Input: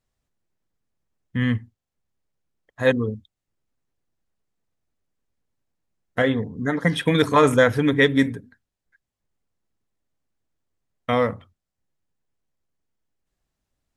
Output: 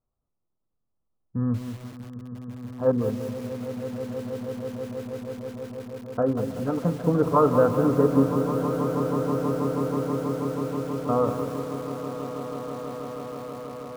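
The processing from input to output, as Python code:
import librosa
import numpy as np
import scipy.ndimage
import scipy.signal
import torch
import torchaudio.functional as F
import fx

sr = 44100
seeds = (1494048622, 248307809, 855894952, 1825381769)

y = scipy.signal.sosfilt(scipy.signal.ellip(4, 1.0, 40, 1300.0, 'lowpass', fs=sr, output='sos'), x)
y = fx.echo_swell(y, sr, ms=161, loudest=8, wet_db=-14)
y = fx.echo_crushed(y, sr, ms=190, feedback_pct=55, bits=6, wet_db=-8.5)
y = F.gain(torch.from_numpy(y), -2.5).numpy()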